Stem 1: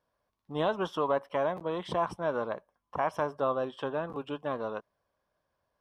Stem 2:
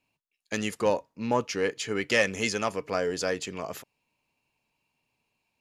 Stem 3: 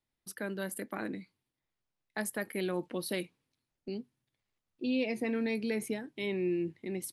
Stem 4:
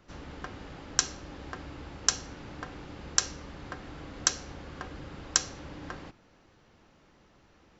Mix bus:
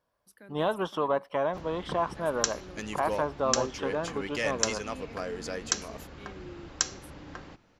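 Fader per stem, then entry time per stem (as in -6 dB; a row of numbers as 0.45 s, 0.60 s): +1.0 dB, -8.0 dB, -14.5 dB, -2.5 dB; 0.00 s, 2.25 s, 0.00 s, 1.45 s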